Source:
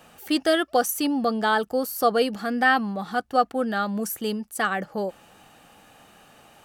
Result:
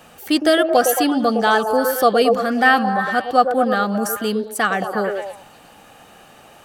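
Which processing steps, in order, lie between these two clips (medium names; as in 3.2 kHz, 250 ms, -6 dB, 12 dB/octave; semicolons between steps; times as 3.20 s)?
repeats whose band climbs or falls 111 ms, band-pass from 470 Hz, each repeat 0.7 oct, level -2 dB; trim +5.5 dB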